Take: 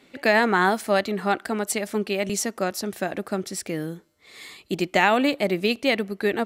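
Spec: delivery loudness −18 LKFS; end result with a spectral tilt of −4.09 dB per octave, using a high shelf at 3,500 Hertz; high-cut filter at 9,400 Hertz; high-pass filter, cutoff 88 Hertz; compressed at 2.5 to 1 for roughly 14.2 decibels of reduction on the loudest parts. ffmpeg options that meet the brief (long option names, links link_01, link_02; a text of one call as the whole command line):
ffmpeg -i in.wav -af "highpass=88,lowpass=9400,highshelf=frequency=3500:gain=-3,acompressor=threshold=-37dB:ratio=2.5,volume=18dB" out.wav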